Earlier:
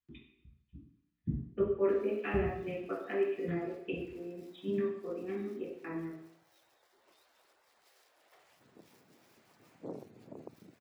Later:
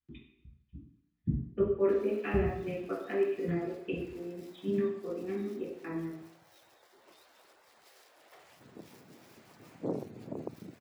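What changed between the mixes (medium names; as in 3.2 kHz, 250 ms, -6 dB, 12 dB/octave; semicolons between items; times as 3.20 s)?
background +6.5 dB; master: add bass shelf 350 Hz +4.5 dB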